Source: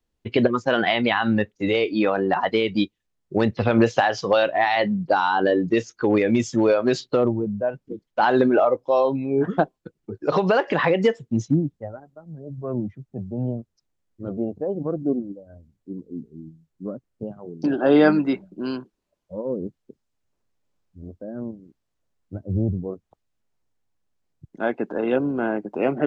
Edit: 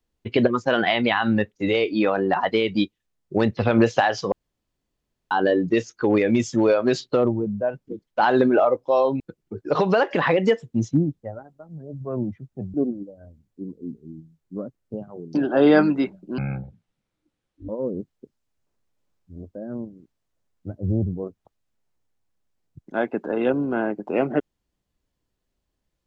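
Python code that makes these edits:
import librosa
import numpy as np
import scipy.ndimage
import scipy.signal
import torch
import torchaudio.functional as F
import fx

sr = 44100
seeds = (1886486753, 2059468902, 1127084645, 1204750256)

y = fx.edit(x, sr, fx.room_tone_fill(start_s=4.32, length_s=0.99),
    fx.cut(start_s=9.2, length_s=0.57),
    fx.cut(start_s=13.31, length_s=1.72),
    fx.speed_span(start_s=18.67, length_s=0.68, speed=0.52), tone=tone)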